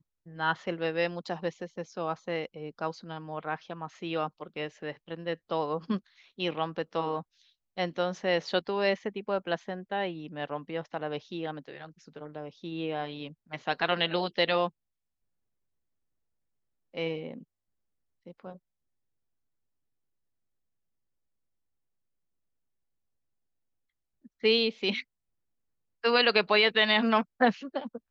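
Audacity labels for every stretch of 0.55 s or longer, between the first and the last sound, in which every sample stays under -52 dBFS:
14.690000	16.940000	silence
17.430000	18.260000	silence
18.570000	24.250000	silence
25.020000	26.030000	silence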